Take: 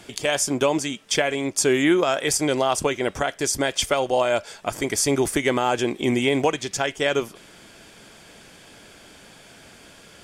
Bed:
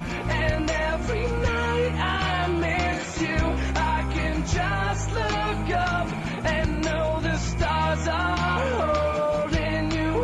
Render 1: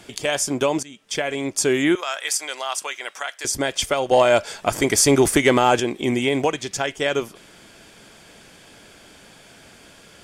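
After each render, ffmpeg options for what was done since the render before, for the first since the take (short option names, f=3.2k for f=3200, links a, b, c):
-filter_complex "[0:a]asettb=1/sr,asplit=3[a][b][c];[a]atrim=end=1.954[d];[b]atrim=start=1.95:end=3.45,asetpts=PTS-STARTPTS,afade=t=in:d=0.004:c=qsin,afade=t=out:st=1.496:d=0.004:c=qsin,highpass=1.1k[e];[c]atrim=start=3.446[f];[d][e]acrossfade=d=0.004:c1=hsin:c2=qsin[g];[g][f]acrossfade=d=0.004:c1=qsin:c2=hsin,asettb=1/sr,asplit=3[h][i][j];[h]atrim=end=4.114[k];[i]atrim=start=4.11:end=5.8,asetpts=PTS-STARTPTS,afade=t=in:d=0.004:c=qsin,afade=t=out:st=1.686:d=0.004:c=qsin,acontrast=50[l];[j]atrim=start=5.796[m];[k][l]acrossfade=d=0.004:c1=hsin:c2=qsin[n];[n][m]acrossfade=d=0.004:c1=qsin:c2=hsin,asplit=2[o][p];[o]atrim=end=0.83,asetpts=PTS-STARTPTS,afade=t=out:st=0.826:d=0.004:c=hsin:silence=0.133352[q];[p]atrim=start=0.83,asetpts=PTS-STARTPTS,afade=t=in:d=0.57:silence=0.133352[r];[q][r]concat=n=2:v=0:a=1"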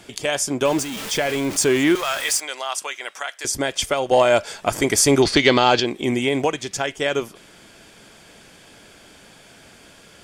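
-filter_complex "[0:a]asettb=1/sr,asplit=3[a][b][c];[a]atrim=end=0.654[d];[b]atrim=start=0.65:end=2.4,asetpts=PTS-STARTPTS,afade=t=in:d=0.004:c=qsin,afade=t=out:st=1.746:d=0.004:c=qsin,aeval=exprs='val(0)+0.5*0.0562*sgn(val(0))':c=same[e];[c]atrim=start=2.396[f];[d][e]acrossfade=d=0.004:c1=hsin:c2=qsin[g];[g][f]acrossfade=d=0.004:c1=qsin:c2=hsin,asettb=1/sr,asplit=3[h][i][j];[h]atrim=end=5.224[k];[i]atrim=start=5.22:end=5.86,asetpts=PTS-STARTPTS,afade=t=in:d=0.004:c=qsin,afade=t=out:st=0.636:d=0.004:c=qsin,lowpass=f=4.4k:t=q:w=8.2[l];[j]atrim=start=5.856[m];[k][l]acrossfade=d=0.004:c1=hsin:c2=qsin[n];[n][m]acrossfade=d=0.004:c1=qsin:c2=hsin"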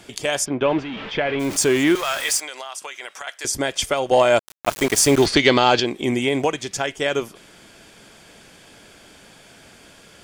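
-filter_complex "[0:a]asplit=3[a][b][c];[a]afade=t=out:st=0.44:d=0.02[d];[b]lowpass=f=3.2k:w=0.5412,lowpass=f=3.2k:w=1.3066,afade=t=in:st=0.44:d=0.02,afade=t=out:st=1.39:d=0.02[e];[c]afade=t=in:st=1.39:d=0.02[f];[d][e][f]amix=inputs=3:normalize=0,asettb=1/sr,asplit=3[g][h][i];[g]atrim=end=2.454[j];[h]atrim=start=2.45:end=3.27,asetpts=PTS-STARTPTS,afade=t=in:d=0.004:c=qsin,afade=t=out:st=0.816:d=0.004:c=qsin,acompressor=threshold=-28dB:ratio=6:attack=3.2:release=140:knee=1:detection=peak[k];[i]atrim=start=3.266[l];[j][k]acrossfade=d=0.004:c1=hsin:c2=qsin[m];[m][l]acrossfade=d=0.004:c1=qsin:c2=hsin,asettb=1/sr,asplit=3[n][o][p];[n]atrim=end=4.394[q];[o]atrim=start=4.39:end=5.26,asetpts=PTS-STARTPTS,afade=t=in:d=0.004:c=qsin,afade=t=out:st=0.866:d=0.004:c=qsin,aeval=exprs='val(0)*gte(abs(val(0)),0.0708)':c=same[r];[p]atrim=start=5.256[s];[q][r]acrossfade=d=0.004:c1=hsin:c2=qsin[t];[t][s]acrossfade=d=0.004:c1=qsin:c2=hsin"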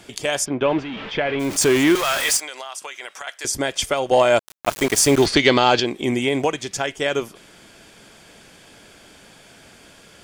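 -filter_complex "[0:a]asettb=1/sr,asplit=3[a][b][c];[a]atrim=end=1.614[d];[b]atrim=start=1.61:end=2.37,asetpts=PTS-STARTPTS,afade=t=in:d=0.004:c=qsin,afade=t=out:st=0.756:d=0.004:c=qsin,aeval=exprs='val(0)+0.5*0.0562*sgn(val(0))':c=same[e];[c]atrim=start=2.366[f];[d][e]acrossfade=d=0.004:c1=hsin:c2=qsin[g];[g][f]acrossfade=d=0.004:c1=qsin:c2=hsin"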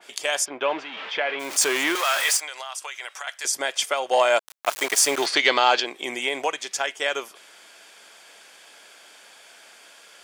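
-af "highpass=680,adynamicequalizer=threshold=0.0282:dfrequency=2900:dqfactor=0.7:tfrequency=2900:tqfactor=0.7:attack=5:release=100:ratio=0.375:range=1.5:mode=cutabove:tftype=highshelf"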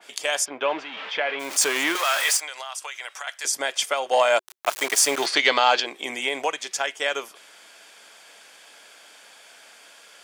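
-af "highpass=97,bandreject=f=370:w=12"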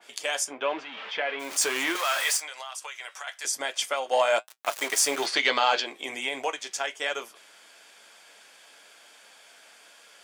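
-af "flanger=delay=8.3:depth=3.3:regen=-53:speed=1.1:shape=sinusoidal"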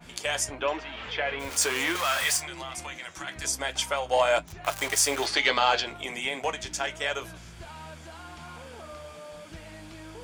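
-filter_complex "[1:a]volume=-20dB[a];[0:a][a]amix=inputs=2:normalize=0"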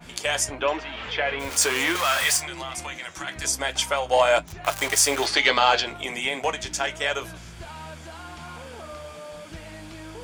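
-af "volume=4dB"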